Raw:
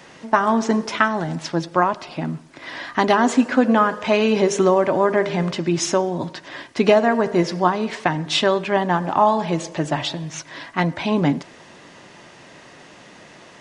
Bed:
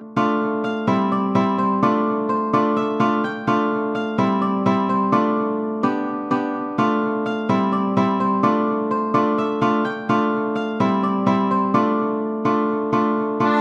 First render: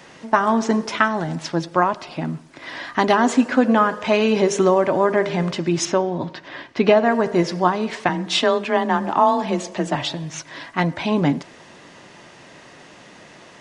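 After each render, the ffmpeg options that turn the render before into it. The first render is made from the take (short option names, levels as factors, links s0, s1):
-filter_complex "[0:a]asettb=1/sr,asplit=3[s0][s1][s2];[s0]atrim=end=5.854[s3];[s1]atrim=start=5.85:end=7.06,asetpts=PTS-STARTPTS,afade=t=in:d=0.004:c=qsin,afade=t=out:st=1.206:d=0.004:c=qsin,lowpass=4200[s4];[s2]atrim=start=7.056[s5];[s3][s4]acrossfade=d=0.004:c1=hsin:c2=qsin[s6];[s6][s5]acrossfade=d=0.004:c1=qsin:c2=hsin,asettb=1/sr,asplit=3[s7][s8][s9];[s7]atrim=end=8.094[s10];[s8]atrim=start=8.09:end=9.95,asetpts=PTS-STARTPTS,afade=t=in:d=0.004:c=qsin,afade=t=out:st=1.856:d=0.004:c=qsin,afreqshift=25[s11];[s9]atrim=start=9.946[s12];[s10][s11]acrossfade=d=0.004:c1=hsin:c2=qsin[s13];[s13][s12]acrossfade=d=0.004:c1=qsin:c2=hsin"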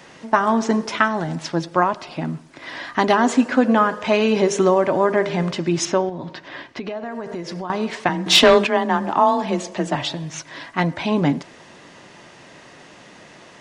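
-filter_complex "[0:a]asettb=1/sr,asplit=3[s0][s1][s2];[s0]atrim=end=6.094[s3];[s1]atrim=start=6.09:end=7.7,asetpts=PTS-STARTPTS,afade=t=in:d=0.004:c=qsin,afade=t=out:st=1.606:d=0.004:c=qsin,acompressor=threshold=0.0501:ratio=6:attack=3.2:release=140:knee=1:detection=peak[s4];[s2]atrim=start=7.696[s5];[s3][s4]acrossfade=d=0.004:c1=hsin:c2=qsin[s6];[s6][s5]acrossfade=d=0.004:c1=qsin:c2=hsin,asettb=1/sr,asplit=3[s7][s8][s9];[s7]atrim=end=8.264[s10];[s8]atrim=start=8.26:end=8.67,asetpts=PTS-STARTPTS,afade=t=in:d=0.004:c=qsin,afade=t=out:st=0.406:d=0.004:c=qsin,aeval=exprs='0.531*sin(PI/2*1.78*val(0)/0.531)':c=same[s11];[s9]atrim=start=8.666[s12];[s10][s11]acrossfade=d=0.004:c1=hsin:c2=qsin[s13];[s13][s12]acrossfade=d=0.004:c1=qsin:c2=hsin"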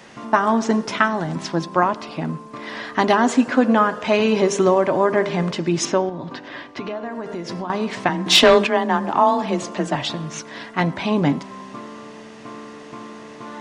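-filter_complex "[1:a]volume=0.126[s0];[0:a][s0]amix=inputs=2:normalize=0"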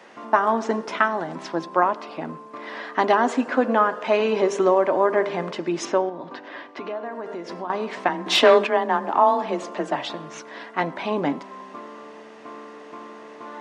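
-af "highpass=350,highshelf=f=3000:g=-11.5"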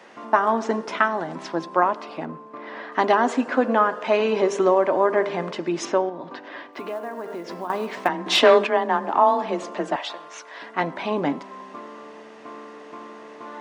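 -filter_complex "[0:a]asettb=1/sr,asplit=3[s0][s1][s2];[s0]atrim=end=2.254[s3];[s1]atrim=start=2.25:end=2.92,asetpts=PTS-STARTPTS,afade=t=in:d=0.004:c=qsin,afade=t=out:st=0.666:d=0.004:c=qsin,lowpass=f=1900:p=1[s4];[s2]atrim=start=2.916[s5];[s3][s4]acrossfade=d=0.004:c1=hsin:c2=qsin[s6];[s6][s5]acrossfade=d=0.004:c1=qsin:c2=hsin,asplit=3[s7][s8][s9];[s7]afade=t=out:st=6.72:d=0.02[s10];[s8]acrusher=bits=7:mode=log:mix=0:aa=0.000001,afade=t=in:st=6.72:d=0.02,afade=t=out:st=8.07:d=0.02[s11];[s9]afade=t=in:st=8.07:d=0.02[s12];[s10][s11][s12]amix=inputs=3:normalize=0,asettb=1/sr,asplit=3[s13][s14][s15];[s13]atrim=end=9.964[s16];[s14]atrim=start=9.96:end=10.62,asetpts=PTS-STARTPTS,afade=t=in:d=0.004:c=qsin,afade=t=out:st=0.656:d=0.004:c=qsin,highpass=600[s17];[s15]atrim=start=10.616[s18];[s16][s17]acrossfade=d=0.004:c1=hsin:c2=qsin[s19];[s19][s18]acrossfade=d=0.004:c1=qsin:c2=hsin"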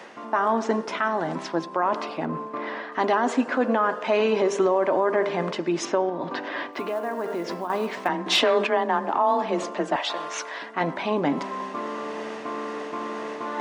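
-af "areverse,acompressor=mode=upward:threshold=0.0794:ratio=2.5,areverse,alimiter=limit=0.251:level=0:latency=1:release=24"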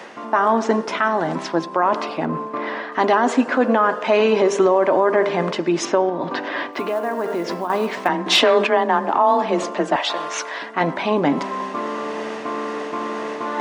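-af "volume=1.88"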